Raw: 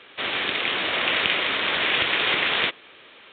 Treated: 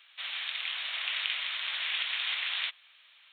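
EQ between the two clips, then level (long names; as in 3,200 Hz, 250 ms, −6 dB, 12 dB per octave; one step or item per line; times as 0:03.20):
inverse Chebyshev high-pass filter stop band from 190 Hz, stop band 60 dB
first difference
−1.0 dB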